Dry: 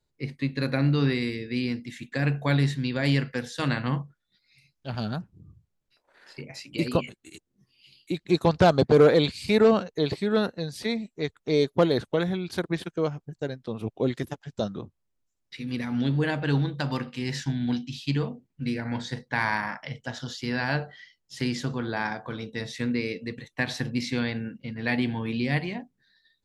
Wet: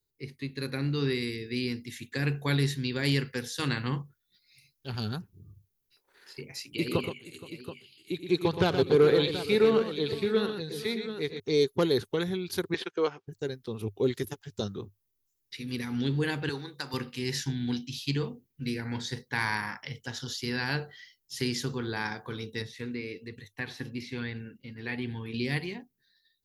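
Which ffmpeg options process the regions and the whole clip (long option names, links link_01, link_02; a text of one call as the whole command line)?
ffmpeg -i in.wav -filter_complex "[0:a]asettb=1/sr,asplit=3[link_01][link_02][link_03];[link_01]atrim=end=6.744[link_04];[link_02]atrim=start=6.74:end=11.4,asetpts=PTS-STARTPTS,afade=type=in:duration=0.004:curve=qsin,afade=type=out:start_time=4.656:duration=0.004:curve=qsin,highpass=90,highshelf=frequency=4300:width_type=q:width=1.5:gain=-6,aecho=1:1:82|122|471|728:0.126|0.398|0.126|0.266,atrim=end_sample=205506[link_05];[link_03]atrim=start=11.396[link_06];[link_04][link_05]acrossfade=duration=0.004:curve1=hsin:curve2=qsin[link_07];[link_07][link_06]acrossfade=duration=0.004:curve1=qsin:curve2=hsin,asettb=1/sr,asplit=3[link_08][link_09][link_10];[link_08]atrim=end=12.744[link_11];[link_09]atrim=start=12.74:end=13.28,asetpts=PTS-STARTPTS,afade=type=in:duration=0.004:curve=qsin,afade=type=out:start_time=0.536:duration=0.004:curve=qsin,highpass=450,lowpass=3600,acontrast=70[link_12];[link_10]atrim=start=13.276[link_13];[link_11][link_12]acrossfade=duration=0.004:curve1=hsin:curve2=qsin[link_14];[link_14][link_13]acrossfade=duration=0.004:curve1=qsin:curve2=hsin,asettb=1/sr,asplit=3[link_15][link_16][link_17];[link_15]atrim=end=16.494[link_18];[link_16]atrim=start=16.49:end=16.94,asetpts=PTS-STARTPTS,afade=type=in:duration=0.004:curve=qsin,afade=type=out:start_time=0.446:duration=0.004:curve=qsin,highpass=frequency=750:poles=1,equalizer=frequency=3100:width_type=o:width=0.4:gain=-10.5[link_19];[link_17]atrim=start=16.936[link_20];[link_18][link_19]acrossfade=duration=0.004:curve1=hsin:curve2=qsin[link_21];[link_21][link_20]acrossfade=duration=0.004:curve1=qsin:curve2=hsin,asettb=1/sr,asplit=3[link_22][link_23][link_24];[link_22]atrim=end=22.624[link_25];[link_23]atrim=start=22.62:end=25.34,asetpts=PTS-STARTPTS,afade=type=in:duration=0.004:curve=qsin,afade=type=out:start_time=2.716:duration=0.004:curve=qsin,acrossover=split=3200[link_26][link_27];[link_27]acompressor=threshold=-50dB:ratio=4:attack=1:release=60[link_28];[link_26][link_28]amix=inputs=2:normalize=0,flanger=delay=0.5:depth=3.2:regen=64:speed=1.2:shape=sinusoidal[link_29];[link_24]atrim=start=25.336[link_30];[link_25][link_29]acrossfade=duration=0.004:curve1=hsin:curve2=qsin[link_31];[link_31][link_30]acrossfade=duration=0.004:curve1=qsin:curve2=hsin,equalizer=frequency=100:width_type=o:width=0.33:gain=8,equalizer=frequency=400:width_type=o:width=0.33:gain=9,equalizer=frequency=630:width_type=o:width=0.33:gain=-10,equalizer=frequency=8000:width_type=o:width=0.33:gain=-7,dynaudnorm=framelen=320:gausssize=7:maxgain=5dB,aemphasis=mode=production:type=75fm,volume=-9dB" out.wav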